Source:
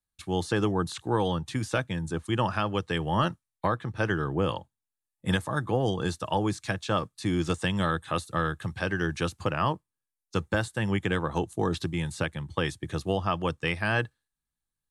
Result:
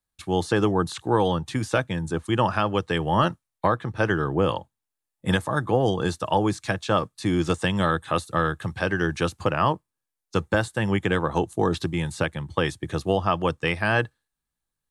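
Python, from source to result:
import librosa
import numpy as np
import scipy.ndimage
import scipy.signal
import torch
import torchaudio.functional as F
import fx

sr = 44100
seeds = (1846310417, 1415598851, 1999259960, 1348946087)

y = fx.peak_eq(x, sr, hz=640.0, db=3.5, octaves=2.5)
y = F.gain(torch.from_numpy(y), 2.5).numpy()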